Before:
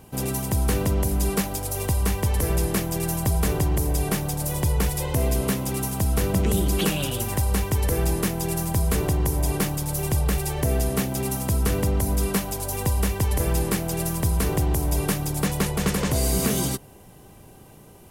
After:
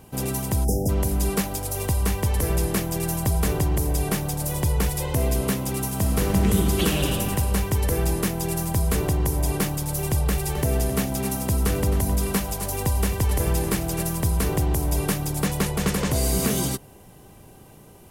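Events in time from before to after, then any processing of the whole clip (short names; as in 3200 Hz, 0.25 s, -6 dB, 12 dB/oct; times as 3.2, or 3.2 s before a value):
0.64–0.89 spectral delete 880–4900 Hz
5.88–7.1 reverb throw, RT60 2.4 s, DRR 2.5 dB
10.16–14.03 echo 0.264 s -11.5 dB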